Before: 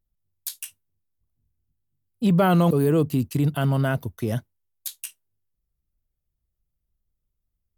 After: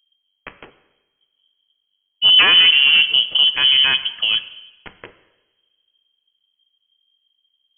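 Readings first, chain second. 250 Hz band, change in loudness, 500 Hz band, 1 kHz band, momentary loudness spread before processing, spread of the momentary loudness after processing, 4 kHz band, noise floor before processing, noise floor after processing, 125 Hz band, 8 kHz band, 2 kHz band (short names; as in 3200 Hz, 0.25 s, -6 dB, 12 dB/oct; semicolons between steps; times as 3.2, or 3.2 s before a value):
under -20 dB, +11.0 dB, -14.0 dB, -1.5 dB, 19 LU, 10 LU, +31.5 dB, -80 dBFS, -73 dBFS, under -25 dB, under -40 dB, +18.0 dB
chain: self-modulated delay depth 0.3 ms; inverted band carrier 3200 Hz; two-slope reverb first 0.99 s, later 2.6 s, from -25 dB, DRR 10.5 dB; gain +6.5 dB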